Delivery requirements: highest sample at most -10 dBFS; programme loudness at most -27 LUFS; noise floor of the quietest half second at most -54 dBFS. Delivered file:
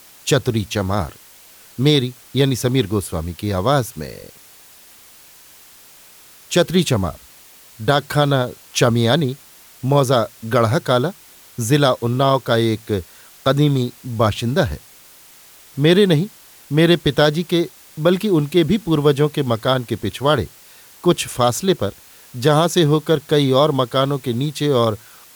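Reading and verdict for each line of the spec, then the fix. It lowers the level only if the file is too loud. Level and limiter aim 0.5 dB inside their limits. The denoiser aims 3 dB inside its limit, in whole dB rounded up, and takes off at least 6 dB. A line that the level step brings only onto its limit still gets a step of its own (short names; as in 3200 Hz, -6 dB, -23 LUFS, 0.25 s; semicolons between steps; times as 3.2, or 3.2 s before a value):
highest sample -3.0 dBFS: fail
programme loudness -18.0 LUFS: fail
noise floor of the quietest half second -46 dBFS: fail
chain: gain -9.5 dB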